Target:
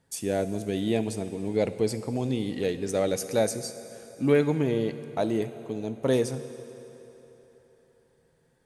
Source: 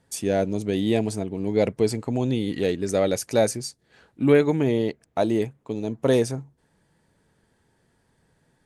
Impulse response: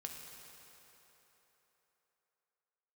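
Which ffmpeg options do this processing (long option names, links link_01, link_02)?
-filter_complex "[0:a]asplit=2[link_01][link_02];[1:a]atrim=start_sample=2205,highshelf=frequency=8800:gain=10[link_03];[link_02][link_03]afir=irnorm=-1:irlink=0,volume=-2dB[link_04];[link_01][link_04]amix=inputs=2:normalize=0,volume=-7.5dB"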